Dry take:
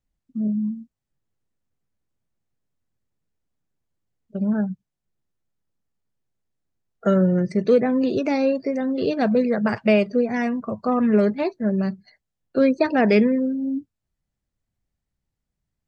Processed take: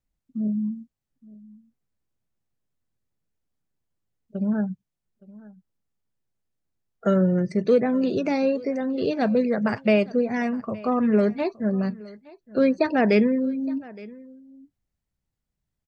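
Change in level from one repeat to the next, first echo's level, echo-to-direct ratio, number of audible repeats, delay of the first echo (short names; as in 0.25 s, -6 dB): no steady repeat, -21.5 dB, -21.5 dB, 1, 0.867 s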